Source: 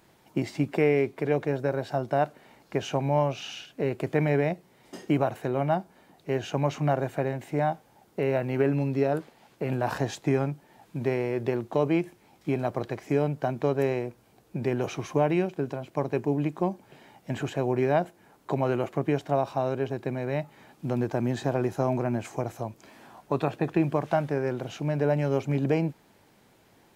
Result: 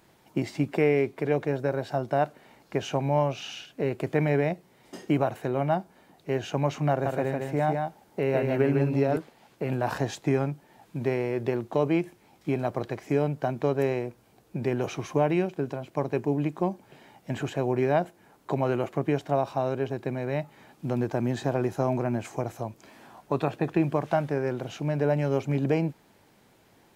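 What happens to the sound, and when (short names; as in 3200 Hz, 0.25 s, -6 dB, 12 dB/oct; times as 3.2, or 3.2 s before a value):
6.9–9.17 echo 0.155 s -4 dB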